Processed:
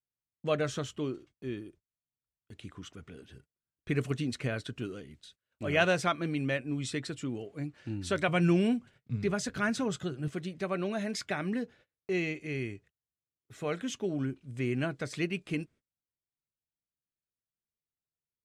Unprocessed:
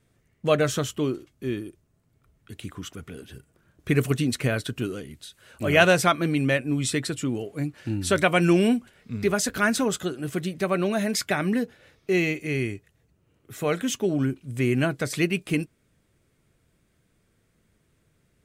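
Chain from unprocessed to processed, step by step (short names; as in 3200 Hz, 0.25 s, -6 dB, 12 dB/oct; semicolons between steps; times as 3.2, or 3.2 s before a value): LPF 6800 Hz 12 dB/oct; gate -47 dBFS, range -29 dB; 8.28–10.28 bell 130 Hz +13.5 dB 0.63 oct; gain -8.5 dB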